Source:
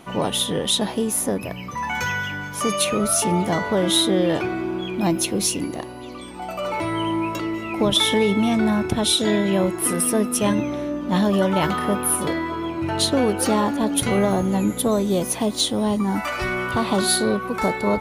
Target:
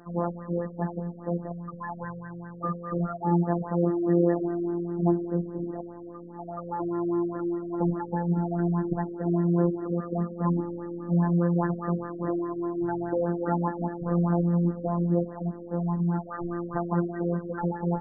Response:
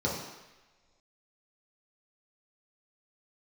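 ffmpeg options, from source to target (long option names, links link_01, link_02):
-filter_complex "[0:a]asplit=2[link_01][link_02];[link_02]tiltshelf=frequency=830:gain=-4[link_03];[1:a]atrim=start_sample=2205,asetrate=61740,aresample=44100[link_04];[link_03][link_04]afir=irnorm=-1:irlink=0,volume=-26dB[link_05];[link_01][link_05]amix=inputs=2:normalize=0,afftfilt=real='hypot(re,im)*cos(PI*b)':imag='0':win_size=1024:overlap=0.75,afftfilt=real='re*lt(b*sr/1024,590*pow(2000/590,0.5+0.5*sin(2*PI*4.9*pts/sr)))':imag='im*lt(b*sr/1024,590*pow(2000/590,0.5+0.5*sin(2*PI*4.9*pts/sr)))':win_size=1024:overlap=0.75,volume=-2dB"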